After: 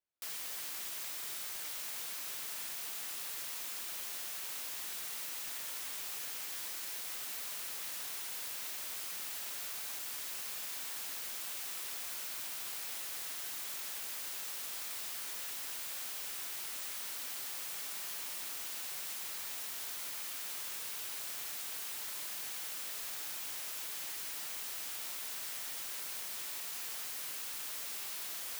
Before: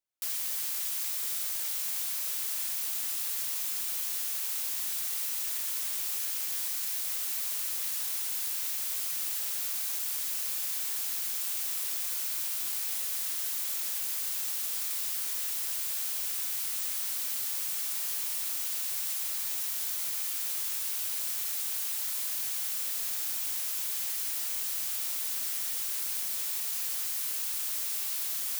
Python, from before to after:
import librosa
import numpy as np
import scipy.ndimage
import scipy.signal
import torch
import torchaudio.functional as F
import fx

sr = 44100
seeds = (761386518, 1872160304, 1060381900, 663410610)

y = fx.high_shelf(x, sr, hz=4100.0, db=-10.0)